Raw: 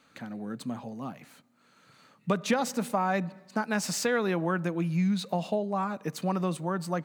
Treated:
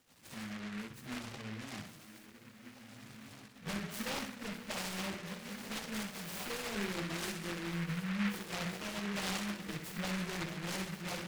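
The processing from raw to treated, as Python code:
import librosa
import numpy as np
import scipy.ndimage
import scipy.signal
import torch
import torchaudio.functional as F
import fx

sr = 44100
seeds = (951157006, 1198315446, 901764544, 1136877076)

y = fx.dynamic_eq(x, sr, hz=9100.0, q=0.97, threshold_db=-51.0, ratio=4.0, max_db=3)
y = fx.rider(y, sr, range_db=3, speed_s=2.0)
y = fx.peak_eq(y, sr, hz=97.0, db=12.5, octaves=0.34)
y = fx.echo_diffused(y, sr, ms=1009, feedback_pct=50, wet_db=-13.0)
y = fx.env_lowpass_down(y, sr, base_hz=1400.0, full_db=-22.5)
y = fx.level_steps(y, sr, step_db=10)
y = fx.hum_notches(y, sr, base_hz=60, count=10)
y = np.clip(y, -10.0 ** (-33.5 / 20.0), 10.0 ** (-33.5 / 20.0))
y = fx.comb_fb(y, sr, f0_hz=69.0, decay_s=0.28, harmonics='odd', damping=0.0, mix_pct=50)
y = fx.stretch_vocoder_free(y, sr, factor=1.6)
y = fx.room_flutter(y, sr, wall_m=11.0, rt60_s=0.48)
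y = fx.noise_mod_delay(y, sr, seeds[0], noise_hz=1700.0, depth_ms=0.3)
y = F.gain(torch.from_numpy(y), 4.0).numpy()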